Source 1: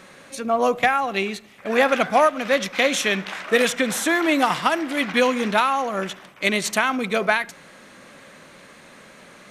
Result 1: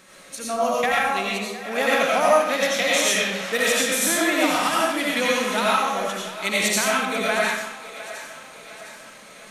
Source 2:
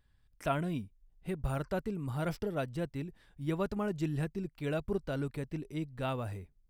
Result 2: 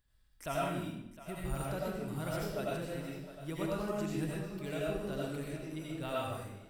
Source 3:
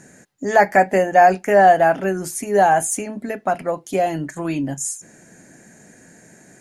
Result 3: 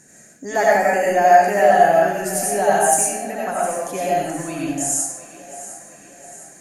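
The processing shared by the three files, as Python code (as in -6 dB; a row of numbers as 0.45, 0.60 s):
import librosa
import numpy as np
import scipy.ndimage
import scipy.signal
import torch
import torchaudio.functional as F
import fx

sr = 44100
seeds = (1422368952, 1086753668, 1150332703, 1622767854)

p1 = fx.high_shelf(x, sr, hz=4200.0, db=11.0)
p2 = p1 + fx.echo_split(p1, sr, split_hz=390.0, low_ms=96, high_ms=709, feedback_pct=52, wet_db=-14.5, dry=0)
p3 = fx.rev_freeverb(p2, sr, rt60_s=0.77, hf_ratio=0.9, predelay_ms=50, drr_db=-5.0)
y = p3 * 10.0 ** (-8.0 / 20.0)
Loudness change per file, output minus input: 0.0, -2.0, +0.5 LU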